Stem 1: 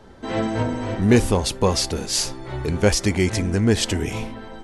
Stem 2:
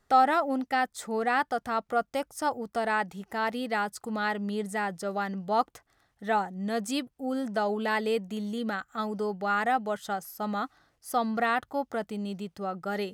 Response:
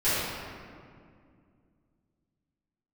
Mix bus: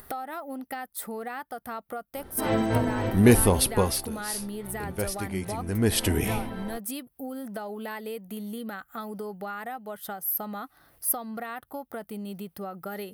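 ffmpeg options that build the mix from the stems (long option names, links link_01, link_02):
-filter_complex "[0:a]adelay=2150,volume=11dB,afade=type=out:start_time=3.64:duration=0.45:silence=0.251189,afade=type=in:start_time=5.6:duration=0.53:silence=0.237137[link_01];[1:a]acompressor=threshold=-35dB:ratio=8,volume=2dB[link_02];[link_01][link_02]amix=inputs=2:normalize=0,acompressor=mode=upward:threshold=-40dB:ratio=2.5,highshelf=frequency=7800:gain=-8,aexciter=amount=15.9:drive=5.9:freq=10000"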